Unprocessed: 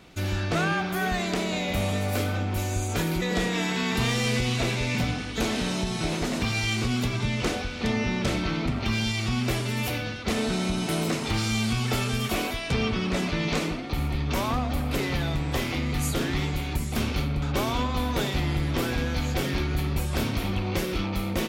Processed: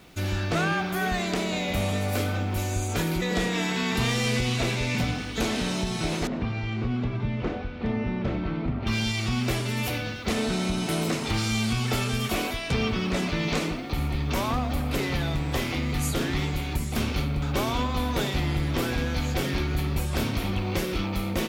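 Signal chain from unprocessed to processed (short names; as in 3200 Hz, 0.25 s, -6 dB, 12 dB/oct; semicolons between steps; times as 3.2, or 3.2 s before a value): requantised 10-bit, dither none; 6.27–8.87 tape spacing loss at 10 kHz 39 dB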